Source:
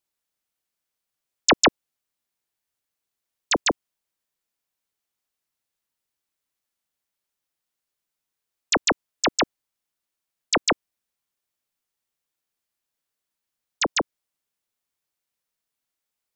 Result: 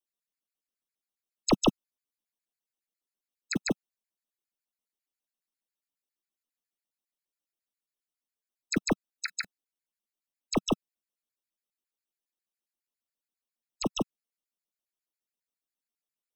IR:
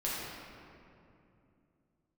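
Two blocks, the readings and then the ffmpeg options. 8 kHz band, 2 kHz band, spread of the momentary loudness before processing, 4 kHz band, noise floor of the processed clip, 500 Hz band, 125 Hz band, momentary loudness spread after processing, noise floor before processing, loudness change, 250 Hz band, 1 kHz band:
−11.0 dB, −13.0 dB, 9 LU, −11.5 dB, below −85 dBFS, −7.0 dB, +2.0 dB, 10 LU, −85 dBFS, −8.5 dB, −0.5 dB, −11.5 dB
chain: -filter_complex "[0:a]equalizer=frequency=190:width=1.1:gain=13,acrossover=split=240|790|1600[link_01][link_02][link_03][link_04];[link_01]acrusher=bits=4:mix=0:aa=0.000001[link_05];[link_03]aeval=exprs='max(val(0),0)':channel_layout=same[link_06];[link_05][link_02][link_06][link_04]amix=inputs=4:normalize=0,afftfilt=real='re*gt(sin(2*PI*7.3*pts/sr)*(1-2*mod(floor(b*sr/1024/1300),2)),0)':imag='im*gt(sin(2*PI*7.3*pts/sr)*(1-2*mod(floor(b*sr/1024/1300),2)),0)':win_size=1024:overlap=0.75,volume=-7.5dB"

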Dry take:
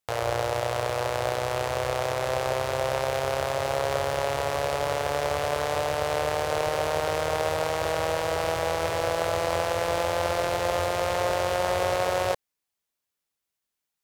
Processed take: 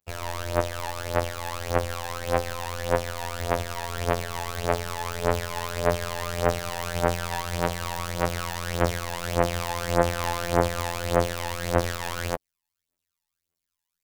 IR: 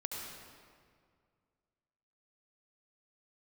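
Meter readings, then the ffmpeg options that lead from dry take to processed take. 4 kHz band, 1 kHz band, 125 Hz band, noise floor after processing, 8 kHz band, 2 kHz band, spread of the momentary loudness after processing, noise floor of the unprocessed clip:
−1.0 dB, −2.0 dB, +4.5 dB, −85 dBFS, +1.0 dB, −1.0 dB, 7 LU, −85 dBFS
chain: -af "asoftclip=type=hard:threshold=-24.5dB,aphaser=in_gain=1:out_gain=1:delay=1.2:decay=0.79:speed=1.7:type=triangular,afftfilt=real='hypot(re,im)*cos(PI*b)':imag='0':win_size=2048:overlap=0.75,aeval=exprs='0.596*(cos(1*acos(clip(val(0)/0.596,-1,1)))-cos(1*PI/2))+0.0422*(cos(7*acos(clip(val(0)/0.596,-1,1)))-cos(7*PI/2))':channel_layout=same,volume=4dB"

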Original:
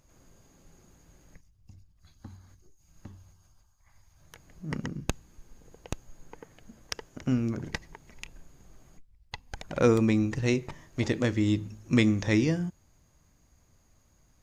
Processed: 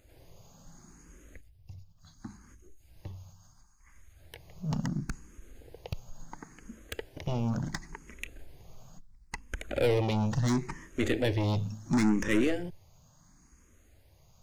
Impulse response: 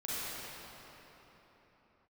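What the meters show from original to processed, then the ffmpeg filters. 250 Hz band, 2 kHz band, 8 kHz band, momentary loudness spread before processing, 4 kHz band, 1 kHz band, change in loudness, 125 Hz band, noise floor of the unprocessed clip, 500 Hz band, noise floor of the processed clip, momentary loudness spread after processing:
−3.5 dB, −2.0 dB, −1.5 dB, 21 LU, −2.0 dB, +1.5 dB, −3.0 dB, −1.5 dB, −65 dBFS, −2.0 dB, −62 dBFS, 22 LU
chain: -filter_complex "[0:a]aeval=exprs='(tanh(28.2*val(0)+0.45)-tanh(0.45))/28.2':channel_layout=same,asplit=2[link_01][link_02];[link_02]afreqshift=0.72[link_03];[link_01][link_03]amix=inputs=2:normalize=1,volume=8dB"

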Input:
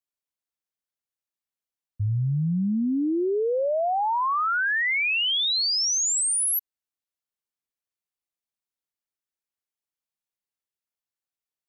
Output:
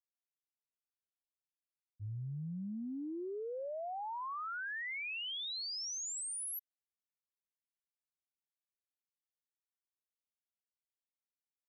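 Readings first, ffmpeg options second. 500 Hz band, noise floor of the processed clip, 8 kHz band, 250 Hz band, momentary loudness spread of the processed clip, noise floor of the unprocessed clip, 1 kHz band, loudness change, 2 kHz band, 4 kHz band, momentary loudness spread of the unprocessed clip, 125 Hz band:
−17.0 dB, below −85 dBFS, −17.0 dB, −17.0 dB, 5 LU, below −85 dBFS, −17.0 dB, −17.0 dB, −17.0 dB, −17.0 dB, 5 LU, −17.0 dB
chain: -af "agate=range=-33dB:threshold=-9dB:ratio=3:detection=peak,volume=9dB"

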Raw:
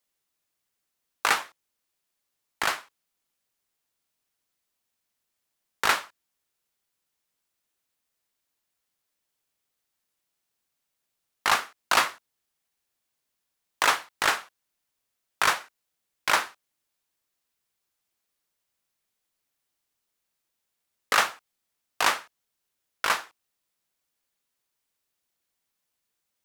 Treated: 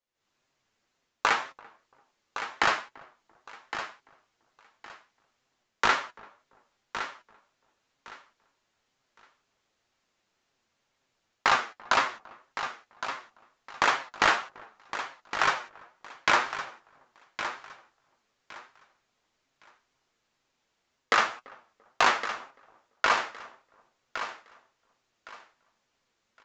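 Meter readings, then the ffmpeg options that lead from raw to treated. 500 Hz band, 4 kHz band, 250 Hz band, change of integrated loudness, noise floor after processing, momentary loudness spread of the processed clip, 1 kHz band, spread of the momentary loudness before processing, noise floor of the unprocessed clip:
+2.0 dB, −2.5 dB, +2.5 dB, −2.5 dB, −78 dBFS, 19 LU, +1.0 dB, 8 LU, −81 dBFS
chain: -filter_complex "[0:a]acompressor=threshold=-26dB:ratio=4,highshelf=frequency=3400:gain=-9,dynaudnorm=framelen=130:gausssize=3:maxgain=15.5dB,asoftclip=type=hard:threshold=-7.5dB,equalizer=frequency=110:width_type=o:width=0.31:gain=-3.5,aresample=16000,aresample=44100,asplit=2[link_01][link_02];[link_02]adelay=339,lowpass=frequency=980:poles=1,volume=-22dB,asplit=2[link_03][link_04];[link_04]adelay=339,lowpass=frequency=980:poles=1,volume=0.3[link_05];[link_03][link_05]amix=inputs=2:normalize=0[link_06];[link_01][link_06]amix=inputs=2:normalize=0,flanger=delay=7.2:depth=2.3:regen=45:speed=2:shape=triangular,asplit=2[link_07][link_08];[link_08]aecho=0:1:1113|2226|3339:0.299|0.0687|0.0158[link_09];[link_07][link_09]amix=inputs=2:normalize=0"

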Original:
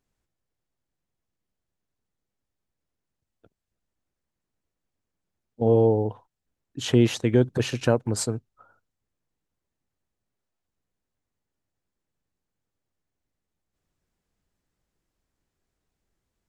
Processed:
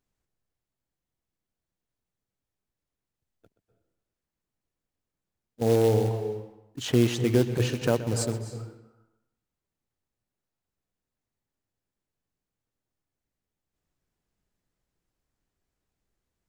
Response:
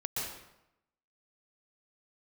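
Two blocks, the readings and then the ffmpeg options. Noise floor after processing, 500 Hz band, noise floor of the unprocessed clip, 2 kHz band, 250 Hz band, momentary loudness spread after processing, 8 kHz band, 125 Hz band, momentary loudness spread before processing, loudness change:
below −85 dBFS, −2.0 dB, −84 dBFS, −1.5 dB, −2.5 dB, 16 LU, −2.0 dB, −1.0 dB, 11 LU, −2.5 dB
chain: -filter_complex "[0:a]acrusher=bits=4:mode=log:mix=0:aa=0.000001,asplit=2[link_01][link_02];[1:a]atrim=start_sample=2205,highshelf=frequency=4200:gain=-6.5,adelay=126[link_03];[link_02][link_03]afir=irnorm=-1:irlink=0,volume=-12dB[link_04];[link_01][link_04]amix=inputs=2:normalize=0,volume=-3dB"

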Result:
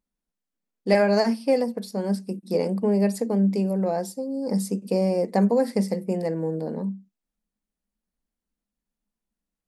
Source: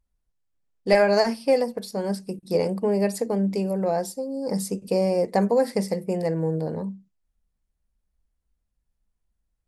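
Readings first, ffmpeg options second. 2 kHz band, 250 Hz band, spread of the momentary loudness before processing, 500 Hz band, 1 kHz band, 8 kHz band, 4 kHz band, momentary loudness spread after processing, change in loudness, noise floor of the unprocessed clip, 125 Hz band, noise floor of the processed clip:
−2.5 dB, +3.0 dB, 10 LU, −1.5 dB, −2.0 dB, −2.5 dB, −2.5 dB, 9 LU, 0.0 dB, −78 dBFS, +1.5 dB, below −85 dBFS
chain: -af "lowshelf=frequency=150:width_type=q:width=3:gain=-11,volume=-2.5dB"

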